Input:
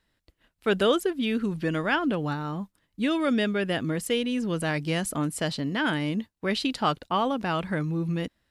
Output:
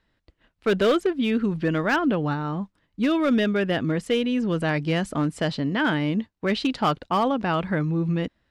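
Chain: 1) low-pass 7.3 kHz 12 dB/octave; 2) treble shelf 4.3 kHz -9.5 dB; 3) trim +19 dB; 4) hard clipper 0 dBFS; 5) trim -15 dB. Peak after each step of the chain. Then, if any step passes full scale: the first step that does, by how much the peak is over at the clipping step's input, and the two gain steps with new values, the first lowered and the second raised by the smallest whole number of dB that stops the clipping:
-11.5 dBFS, -12.5 dBFS, +6.5 dBFS, 0.0 dBFS, -15.0 dBFS; step 3, 6.5 dB; step 3 +12 dB, step 5 -8 dB

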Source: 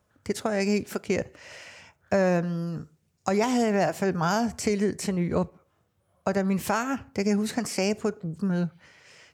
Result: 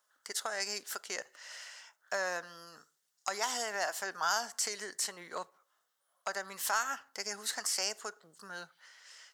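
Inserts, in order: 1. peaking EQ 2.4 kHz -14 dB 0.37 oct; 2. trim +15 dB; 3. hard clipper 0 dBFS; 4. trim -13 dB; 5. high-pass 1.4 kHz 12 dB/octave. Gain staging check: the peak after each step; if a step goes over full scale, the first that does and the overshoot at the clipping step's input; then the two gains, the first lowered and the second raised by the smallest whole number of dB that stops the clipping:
-9.5 dBFS, +5.5 dBFS, 0.0 dBFS, -13.0 dBFS, -15.5 dBFS; step 2, 5.5 dB; step 2 +9 dB, step 4 -7 dB

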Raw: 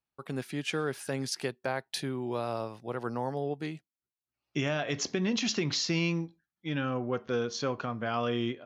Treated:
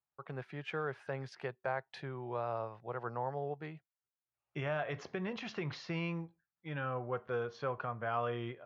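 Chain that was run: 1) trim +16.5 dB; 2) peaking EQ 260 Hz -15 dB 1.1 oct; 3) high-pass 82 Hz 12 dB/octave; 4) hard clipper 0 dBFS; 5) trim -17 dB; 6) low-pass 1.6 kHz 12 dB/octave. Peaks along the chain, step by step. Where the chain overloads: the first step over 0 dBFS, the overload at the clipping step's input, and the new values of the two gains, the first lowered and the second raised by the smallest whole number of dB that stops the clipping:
-2.0 dBFS, -2.5 dBFS, -2.5 dBFS, -2.5 dBFS, -19.5 dBFS, -23.0 dBFS; nothing clips

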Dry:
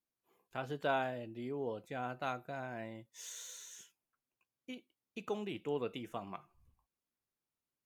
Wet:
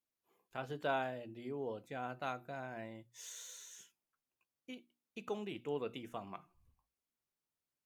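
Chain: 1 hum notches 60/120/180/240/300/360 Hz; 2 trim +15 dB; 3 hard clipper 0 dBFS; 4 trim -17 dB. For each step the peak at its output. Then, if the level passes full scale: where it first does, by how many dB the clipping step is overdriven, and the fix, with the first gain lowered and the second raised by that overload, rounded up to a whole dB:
-19.5 dBFS, -4.5 dBFS, -4.5 dBFS, -21.5 dBFS; nothing clips

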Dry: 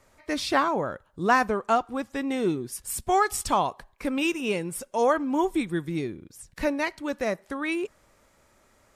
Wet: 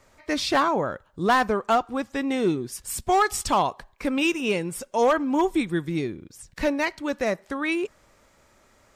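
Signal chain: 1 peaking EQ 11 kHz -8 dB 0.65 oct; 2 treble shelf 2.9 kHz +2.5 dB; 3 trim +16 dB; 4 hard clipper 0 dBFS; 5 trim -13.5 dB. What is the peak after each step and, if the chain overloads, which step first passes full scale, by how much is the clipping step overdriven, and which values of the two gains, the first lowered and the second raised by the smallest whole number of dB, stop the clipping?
-8.0 dBFS, -7.5 dBFS, +8.5 dBFS, 0.0 dBFS, -13.5 dBFS; step 3, 8.5 dB; step 3 +7 dB, step 5 -4.5 dB

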